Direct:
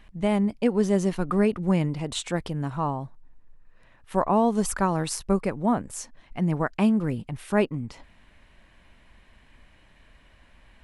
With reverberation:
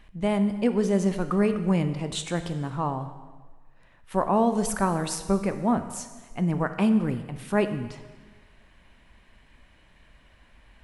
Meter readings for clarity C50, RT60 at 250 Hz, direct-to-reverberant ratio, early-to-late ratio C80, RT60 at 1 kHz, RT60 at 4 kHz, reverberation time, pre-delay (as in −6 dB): 10.5 dB, 1.5 s, 9.0 dB, 12.0 dB, 1.4 s, 1.3 s, 1.4 s, 7 ms